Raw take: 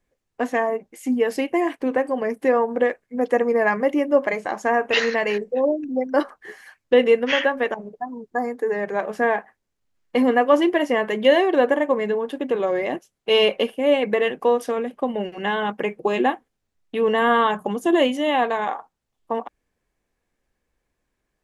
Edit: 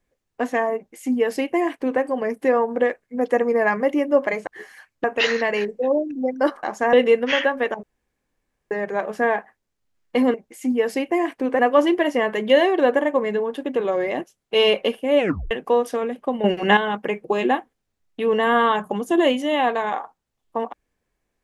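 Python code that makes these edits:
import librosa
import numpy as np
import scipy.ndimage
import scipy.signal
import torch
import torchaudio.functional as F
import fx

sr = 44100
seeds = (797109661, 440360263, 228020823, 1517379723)

y = fx.edit(x, sr, fx.duplicate(start_s=0.76, length_s=1.25, to_s=10.34),
    fx.swap(start_s=4.47, length_s=0.3, other_s=6.36, other_length_s=0.57),
    fx.room_tone_fill(start_s=7.83, length_s=0.88),
    fx.tape_stop(start_s=13.94, length_s=0.32),
    fx.clip_gain(start_s=15.19, length_s=0.33, db=9.0), tone=tone)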